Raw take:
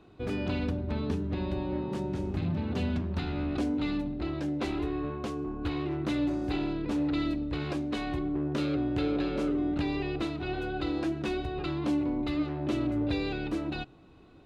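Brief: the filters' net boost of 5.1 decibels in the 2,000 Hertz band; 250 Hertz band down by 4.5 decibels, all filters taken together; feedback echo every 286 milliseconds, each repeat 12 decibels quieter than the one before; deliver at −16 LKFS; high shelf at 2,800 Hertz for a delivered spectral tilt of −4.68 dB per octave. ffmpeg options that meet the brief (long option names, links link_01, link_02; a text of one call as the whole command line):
ffmpeg -i in.wav -af "equalizer=frequency=250:width_type=o:gain=-6,equalizer=frequency=2000:width_type=o:gain=5.5,highshelf=frequency=2800:gain=3,aecho=1:1:286|572|858:0.251|0.0628|0.0157,volume=17.5dB" out.wav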